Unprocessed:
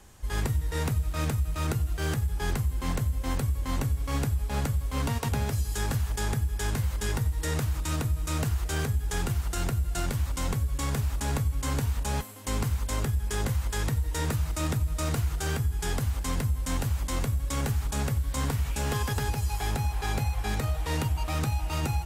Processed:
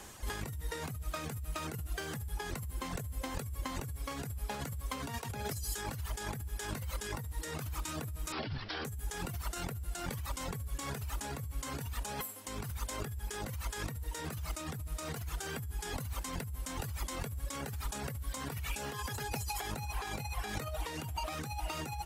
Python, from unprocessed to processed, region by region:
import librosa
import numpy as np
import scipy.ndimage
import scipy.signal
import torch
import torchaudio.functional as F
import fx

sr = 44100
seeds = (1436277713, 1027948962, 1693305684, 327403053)

y = fx.chain(x, sr, fx.lower_of_two(delay_ms=9.2),
    fx.resample_bad(factor=4, down='none', up='filtered'), at=(8.32, 8.85))
y = fx.dereverb_blind(y, sr, rt60_s=1.6)
y = fx.low_shelf(y, sr, hz=140.0, db=-12.0)
y = fx.over_compress(y, sr, threshold_db=-41.0, ratio=-1.0)
y = y * librosa.db_to_amplitude(2.5)